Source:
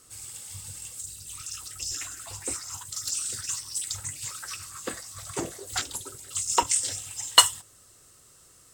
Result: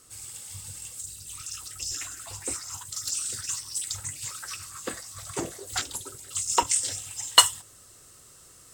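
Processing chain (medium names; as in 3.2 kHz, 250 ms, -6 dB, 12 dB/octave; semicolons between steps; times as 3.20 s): reverse; upward compressor, threshold -46 dBFS; reverse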